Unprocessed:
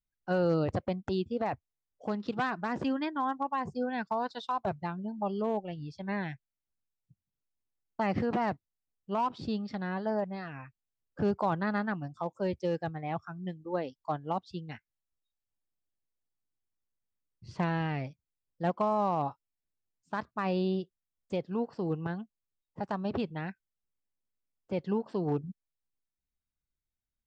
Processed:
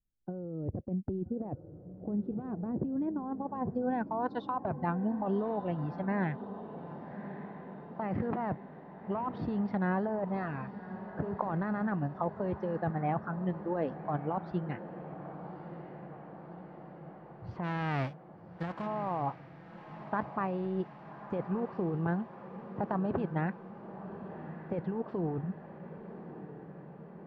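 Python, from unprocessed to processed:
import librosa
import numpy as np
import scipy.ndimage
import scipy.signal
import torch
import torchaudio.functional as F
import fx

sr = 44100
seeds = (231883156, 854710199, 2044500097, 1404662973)

y = fx.envelope_flatten(x, sr, power=0.3, at=(17.63, 18.86), fade=0.02)
y = fx.over_compress(y, sr, threshold_db=-34.0, ratio=-1.0)
y = fx.filter_sweep_lowpass(y, sr, from_hz=360.0, to_hz=1500.0, start_s=2.85, end_s=4.46, q=0.84)
y = fx.echo_diffused(y, sr, ms=1168, feedback_pct=66, wet_db=-12)
y = F.gain(torch.from_numpy(y), 2.0).numpy()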